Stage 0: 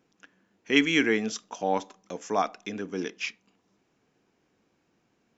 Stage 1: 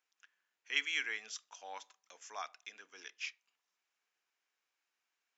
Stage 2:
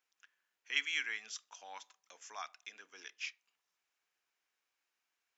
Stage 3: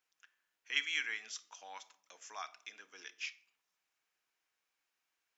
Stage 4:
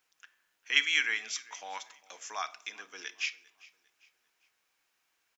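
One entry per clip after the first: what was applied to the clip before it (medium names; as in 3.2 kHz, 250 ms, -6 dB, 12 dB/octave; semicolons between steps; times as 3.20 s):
high-pass 1.4 kHz 12 dB/octave; trim -8.5 dB
dynamic bell 470 Hz, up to -7 dB, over -60 dBFS, Q 1.1
reverberation RT60 0.60 s, pre-delay 6 ms, DRR 12 dB
feedback delay 399 ms, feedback 38%, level -22.5 dB; trim +8.5 dB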